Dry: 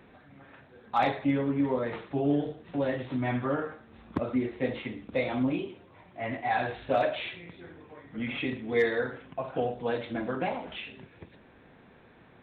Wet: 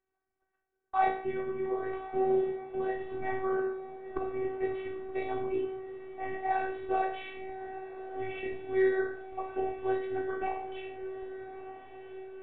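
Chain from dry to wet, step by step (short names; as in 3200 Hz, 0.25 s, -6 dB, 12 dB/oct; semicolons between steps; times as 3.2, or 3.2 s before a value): gate -47 dBFS, range -27 dB; LPF 2000 Hz 12 dB/oct; bell 270 Hz -5.5 dB 0.27 oct; resonator 58 Hz, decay 0.49 s, harmonics all, mix 80%; robotiser 381 Hz; diffused feedback echo 1.265 s, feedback 57%, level -12 dB; gain +7.5 dB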